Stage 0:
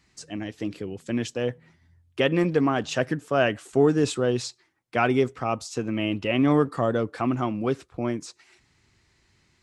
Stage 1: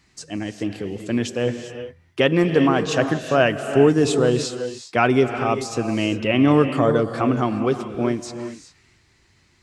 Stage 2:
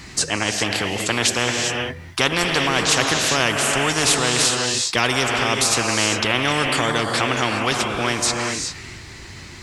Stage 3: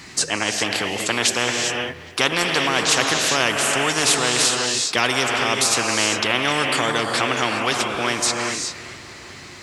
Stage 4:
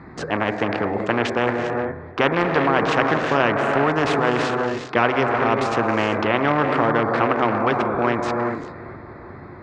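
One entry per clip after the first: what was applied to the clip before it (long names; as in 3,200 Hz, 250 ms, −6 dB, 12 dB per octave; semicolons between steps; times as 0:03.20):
reverb whose tail is shaped and stops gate 430 ms rising, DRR 8 dB; level +4.5 dB
every bin compressed towards the loudest bin 4 to 1
high-pass filter 200 Hz 6 dB per octave; delay with a low-pass on its return 408 ms, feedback 70%, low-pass 3,200 Hz, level −20.5 dB
adaptive Wiener filter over 15 samples; low-pass filter 1,600 Hz 12 dB per octave; hum removal 63.39 Hz, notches 38; level +5.5 dB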